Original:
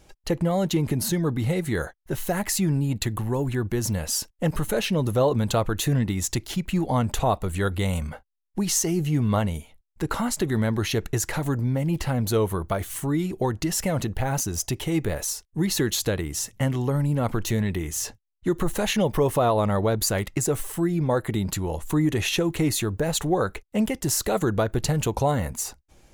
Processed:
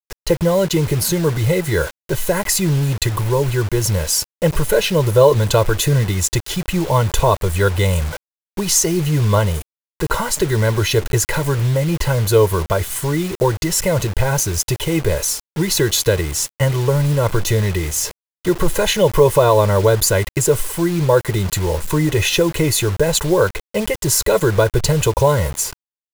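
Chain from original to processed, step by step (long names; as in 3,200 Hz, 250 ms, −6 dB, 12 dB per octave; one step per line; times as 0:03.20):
comb filter 2 ms, depth 85%
bit-depth reduction 6 bits, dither none
level +6 dB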